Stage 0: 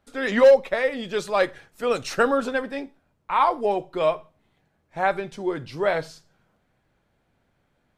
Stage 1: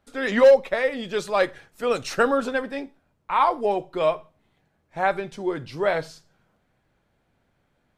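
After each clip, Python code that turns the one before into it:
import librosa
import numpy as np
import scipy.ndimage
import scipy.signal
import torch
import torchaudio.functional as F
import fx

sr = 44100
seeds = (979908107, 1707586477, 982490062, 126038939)

y = x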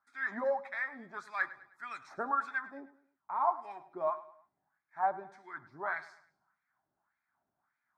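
y = fx.wah_lfo(x, sr, hz=1.7, low_hz=490.0, high_hz=2400.0, q=2.7)
y = fx.fixed_phaser(y, sr, hz=1200.0, stages=4)
y = fx.echo_feedback(y, sr, ms=104, feedback_pct=40, wet_db=-17)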